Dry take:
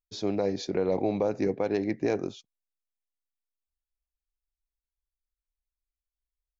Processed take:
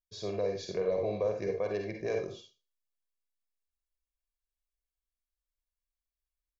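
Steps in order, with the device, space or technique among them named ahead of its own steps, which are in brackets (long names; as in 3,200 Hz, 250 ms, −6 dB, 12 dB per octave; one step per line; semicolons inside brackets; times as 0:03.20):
microphone above a desk (comb filter 1.8 ms, depth 76%; convolution reverb RT60 0.30 s, pre-delay 42 ms, DRR 2.5 dB)
level −8 dB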